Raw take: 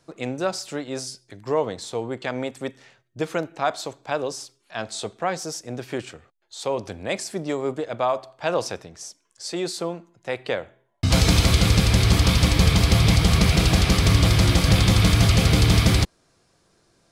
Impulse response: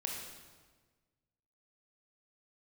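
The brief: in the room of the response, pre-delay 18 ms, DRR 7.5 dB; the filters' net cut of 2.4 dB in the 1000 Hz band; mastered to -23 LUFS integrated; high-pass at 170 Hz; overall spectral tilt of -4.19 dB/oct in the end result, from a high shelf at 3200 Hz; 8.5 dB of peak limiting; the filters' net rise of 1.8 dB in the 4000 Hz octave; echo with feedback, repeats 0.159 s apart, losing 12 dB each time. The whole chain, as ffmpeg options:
-filter_complex "[0:a]highpass=170,equalizer=f=1k:t=o:g=-3,highshelf=f=3.2k:g=-5,equalizer=f=4k:t=o:g=6,alimiter=limit=-14dB:level=0:latency=1,aecho=1:1:159|318|477:0.251|0.0628|0.0157,asplit=2[a][b];[1:a]atrim=start_sample=2205,adelay=18[c];[b][c]afir=irnorm=-1:irlink=0,volume=-8.5dB[d];[a][d]amix=inputs=2:normalize=0,volume=2.5dB"

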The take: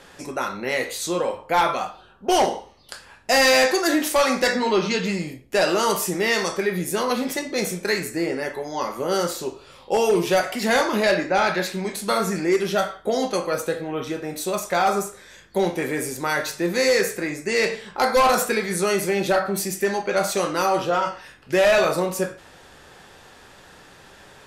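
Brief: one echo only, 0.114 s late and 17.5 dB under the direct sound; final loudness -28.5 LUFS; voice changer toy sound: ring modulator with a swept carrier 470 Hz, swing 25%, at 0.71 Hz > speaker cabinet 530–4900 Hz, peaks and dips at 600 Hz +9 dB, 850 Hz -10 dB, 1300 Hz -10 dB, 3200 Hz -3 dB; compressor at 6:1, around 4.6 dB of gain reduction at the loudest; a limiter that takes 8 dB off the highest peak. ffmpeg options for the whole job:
-af "acompressor=threshold=-19dB:ratio=6,alimiter=limit=-19dB:level=0:latency=1,aecho=1:1:114:0.133,aeval=exprs='val(0)*sin(2*PI*470*n/s+470*0.25/0.71*sin(2*PI*0.71*n/s))':c=same,highpass=530,equalizer=f=600:t=q:w=4:g=9,equalizer=f=850:t=q:w=4:g=-10,equalizer=f=1.3k:t=q:w=4:g=-10,equalizer=f=3.2k:t=q:w=4:g=-3,lowpass=f=4.9k:w=0.5412,lowpass=f=4.9k:w=1.3066,volume=7dB"

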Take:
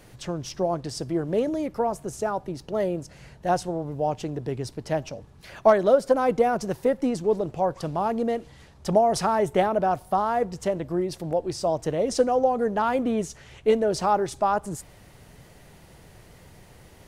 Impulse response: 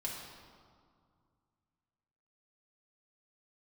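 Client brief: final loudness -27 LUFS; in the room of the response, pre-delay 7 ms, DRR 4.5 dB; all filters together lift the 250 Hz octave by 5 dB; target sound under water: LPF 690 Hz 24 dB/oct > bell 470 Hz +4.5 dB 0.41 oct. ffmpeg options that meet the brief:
-filter_complex "[0:a]equalizer=f=250:t=o:g=6,asplit=2[a][b];[1:a]atrim=start_sample=2205,adelay=7[c];[b][c]afir=irnorm=-1:irlink=0,volume=-5.5dB[d];[a][d]amix=inputs=2:normalize=0,lowpass=f=690:w=0.5412,lowpass=f=690:w=1.3066,equalizer=f=470:t=o:w=0.41:g=4.5,volume=-5.5dB"

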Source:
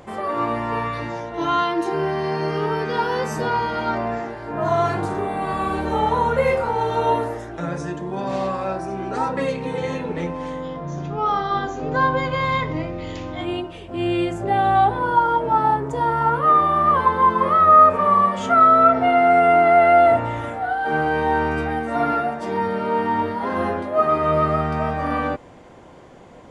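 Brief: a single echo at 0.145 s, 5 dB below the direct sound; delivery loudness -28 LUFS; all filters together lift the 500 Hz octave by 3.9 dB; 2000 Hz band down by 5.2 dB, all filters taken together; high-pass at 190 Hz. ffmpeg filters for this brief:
-af "highpass=190,equalizer=f=500:t=o:g=6,equalizer=f=2k:t=o:g=-7.5,aecho=1:1:145:0.562,volume=-10dB"

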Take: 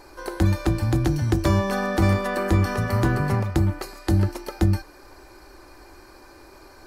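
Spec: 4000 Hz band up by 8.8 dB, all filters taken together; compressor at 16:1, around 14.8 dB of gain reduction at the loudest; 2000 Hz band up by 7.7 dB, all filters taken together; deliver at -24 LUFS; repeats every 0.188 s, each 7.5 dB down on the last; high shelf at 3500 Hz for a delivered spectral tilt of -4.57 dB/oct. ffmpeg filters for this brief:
-af "equalizer=f=2k:t=o:g=7,highshelf=f=3.5k:g=8.5,equalizer=f=4k:t=o:g=3,acompressor=threshold=-29dB:ratio=16,aecho=1:1:188|376|564|752|940:0.422|0.177|0.0744|0.0312|0.0131,volume=10dB"

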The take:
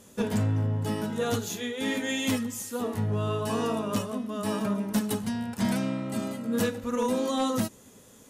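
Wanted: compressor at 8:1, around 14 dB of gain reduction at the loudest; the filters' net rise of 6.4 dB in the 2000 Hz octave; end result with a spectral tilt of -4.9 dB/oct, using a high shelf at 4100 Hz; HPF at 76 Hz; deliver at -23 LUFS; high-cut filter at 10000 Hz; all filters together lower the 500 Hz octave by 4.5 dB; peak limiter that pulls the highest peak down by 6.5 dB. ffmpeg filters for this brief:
-af "highpass=76,lowpass=10k,equalizer=f=500:t=o:g=-5.5,equalizer=f=2k:t=o:g=9,highshelf=f=4.1k:g=-5,acompressor=threshold=-38dB:ratio=8,volume=19dB,alimiter=limit=-14dB:level=0:latency=1"

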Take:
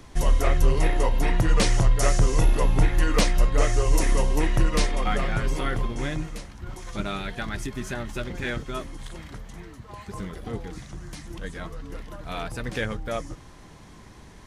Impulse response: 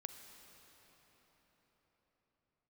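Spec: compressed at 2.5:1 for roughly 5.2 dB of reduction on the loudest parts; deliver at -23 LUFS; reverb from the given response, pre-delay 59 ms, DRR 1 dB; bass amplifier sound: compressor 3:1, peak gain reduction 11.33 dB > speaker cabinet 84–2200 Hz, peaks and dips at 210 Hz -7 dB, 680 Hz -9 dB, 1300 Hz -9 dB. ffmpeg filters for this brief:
-filter_complex "[0:a]acompressor=threshold=-21dB:ratio=2.5,asplit=2[a][b];[1:a]atrim=start_sample=2205,adelay=59[c];[b][c]afir=irnorm=-1:irlink=0,volume=3dB[d];[a][d]amix=inputs=2:normalize=0,acompressor=threshold=-28dB:ratio=3,highpass=f=84:w=0.5412,highpass=f=84:w=1.3066,equalizer=f=210:t=q:w=4:g=-7,equalizer=f=680:t=q:w=4:g=-9,equalizer=f=1.3k:t=q:w=4:g=-9,lowpass=f=2.2k:w=0.5412,lowpass=f=2.2k:w=1.3066,volume=15.5dB"

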